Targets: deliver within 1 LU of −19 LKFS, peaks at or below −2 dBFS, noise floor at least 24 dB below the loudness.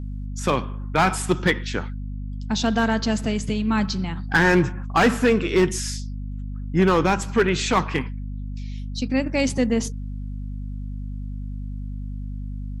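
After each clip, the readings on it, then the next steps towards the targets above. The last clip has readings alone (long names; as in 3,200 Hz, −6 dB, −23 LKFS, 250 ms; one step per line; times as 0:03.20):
share of clipped samples 0.4%; peaks flattened at −10.5 dBFS; mains hum 50 Hz; hum harmonics up to 250 Hz; level of the hum −28 dBFS; integrated loudness −22.5 LKFS; sample peak −10.5 dBFS; target loudness −19.0 LKFS
→ clipped peaks rebuilt −10.5 dBFS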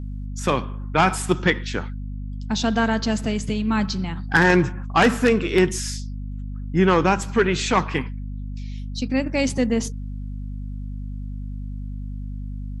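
share of clipped samples 0.0%; mains hum 50 Hz; hum harmonics up to 250 Hz; level of the hum −28 dBFS
→ hum removal 50 Hz, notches 5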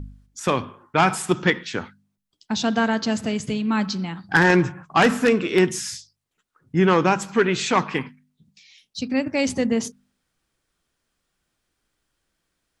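mains hum none found; integrated loudness −21.5 LKFS; sample peak −2.0 dBFS; target loudness −19.0 LKFS
→ level +2.5 dB
brickwall limiter −2 dBFS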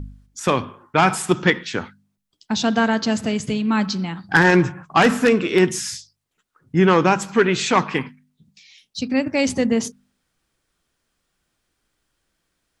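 integrated loudness −19.5 LKFS; sample peak −2.0 dBFS; background noise floor −75 dBFS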